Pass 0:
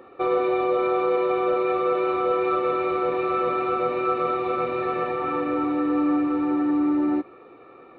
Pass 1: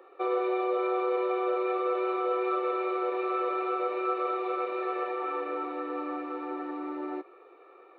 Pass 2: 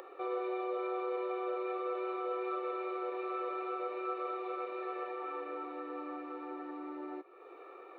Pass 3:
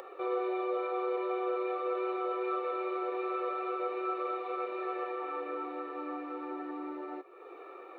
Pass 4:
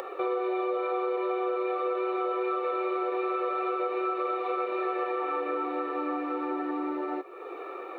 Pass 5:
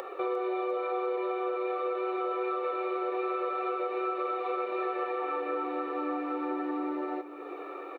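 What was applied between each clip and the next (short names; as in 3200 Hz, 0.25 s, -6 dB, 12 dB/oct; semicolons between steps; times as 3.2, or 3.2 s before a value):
Chebyshev high-pass 360 Hz, order 4; gain -5.5 dB
upward compressor, threshold -32 dBFS; gain -8 dB
flange 0.28 Hz, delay 1.4 ms, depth 5.3 ms, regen -67%; gain +7.5 dB
compressor, threshold -35 dBFS, peak gain reduction 7 dB; gain +9 dB
feedback echo 0.352 s, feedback 59%, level -15.5 dB; gain -2 dB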